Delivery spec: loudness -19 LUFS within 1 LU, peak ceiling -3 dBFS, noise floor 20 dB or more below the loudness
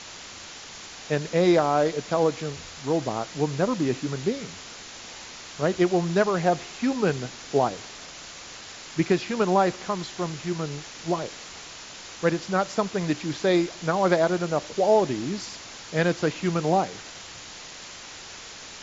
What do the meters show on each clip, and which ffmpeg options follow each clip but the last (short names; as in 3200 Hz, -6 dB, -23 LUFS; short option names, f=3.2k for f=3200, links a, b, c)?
noise floor -42 dBFS; noise floor target -46 dBFS; loudness -25.5 LUFS; peak -8.5 dBFS; loudness target -19.0 LUFS
-> -af "afftdn=nr=6:nf=-42"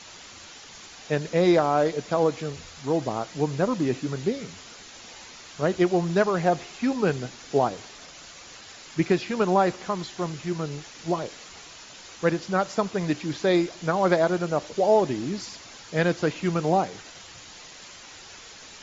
noise floor -46 dBFS; loudness -25.5 LUFS; peak -8.5 dBFS; loudness target -19.0 LUFS
-> -af "volume=6.5dB,alimiter=limit=-3dB:level=0:latency=1"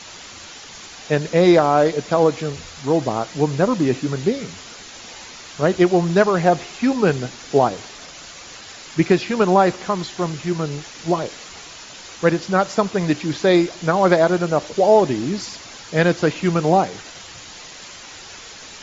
loudness -19.0 LUFS; peak -3.0 dBFS; noise floor -39 dBFS